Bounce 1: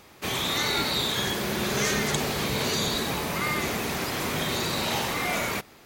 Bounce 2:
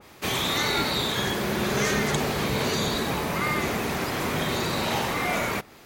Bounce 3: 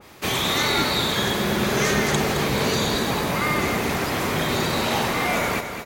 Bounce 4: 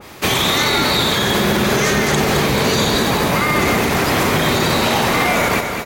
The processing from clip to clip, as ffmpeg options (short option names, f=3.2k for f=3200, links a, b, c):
-af "adynamicequalizer=threshold=0.01:dfrequency=2500:dqfactor=0.7:tfrequency=2500:tqfactor=0.7:attack=5:release=100:ratio=0.375:range=2.5:mode=cutabove:tftype=highshelf,volume=2.5dB"
-af "aecho=1:1:217|434|651|868|1085:0.376|0.169|0.0761|0.0342|0.0154,volume=3dB"
-af "alimiter=level_in=14.5dB:limit=-1dB:release=50:level=0:latency=1,volume=-5.5dB"